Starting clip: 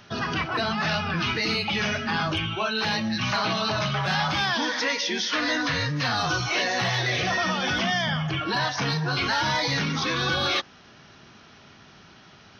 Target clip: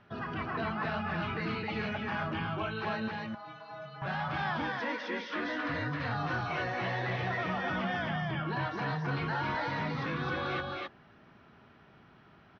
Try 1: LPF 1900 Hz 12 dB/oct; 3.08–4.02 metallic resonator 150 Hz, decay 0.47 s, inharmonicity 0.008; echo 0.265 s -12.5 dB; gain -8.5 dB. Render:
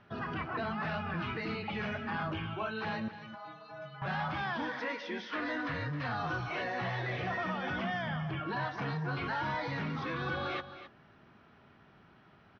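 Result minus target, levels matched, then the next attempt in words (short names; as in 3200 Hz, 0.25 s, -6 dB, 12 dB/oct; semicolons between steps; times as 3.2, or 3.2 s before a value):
echo-to-direct -10.5 dB
LPF 1900 Hz 12 dB/oct; 3.08–4.02 metallic resonator 150 Hz, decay 0.47 s, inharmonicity 0.008; echo 0.265 s -2 dB; gain -8.5 dB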